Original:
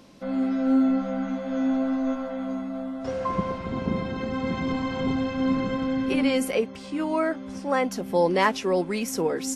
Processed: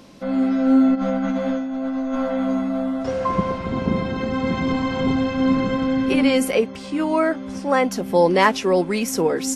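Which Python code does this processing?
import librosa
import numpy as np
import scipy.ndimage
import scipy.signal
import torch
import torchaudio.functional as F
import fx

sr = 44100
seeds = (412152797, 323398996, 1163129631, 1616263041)

y = fx.over_compress(x, sr, threshold_db=-29.0, ratio=-1.0, at=(0.94, 3.02), fade=0.02)
y = F.gain(torch.from_numpy(y), 5.5).numpy()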